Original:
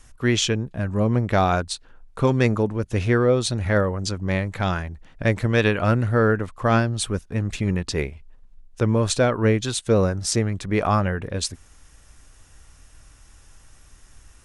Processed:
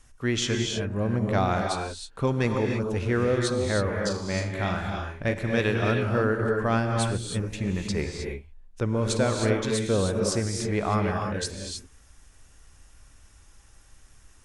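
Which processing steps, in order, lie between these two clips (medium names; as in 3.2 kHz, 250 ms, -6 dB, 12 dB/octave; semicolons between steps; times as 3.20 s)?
3.81–5.34 s: flutter echo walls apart 6.7 m, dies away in 0.36 s; gated-style reverb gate 340 ms rising, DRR 2 dB; trim -6 dB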